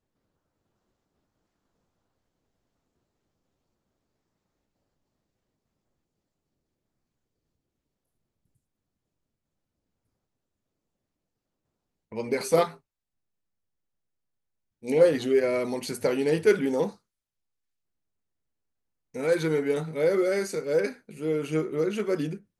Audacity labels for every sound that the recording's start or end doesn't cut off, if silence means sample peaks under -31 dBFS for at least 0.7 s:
12.120000	12.680000	sound
14.850000	16.890000	sound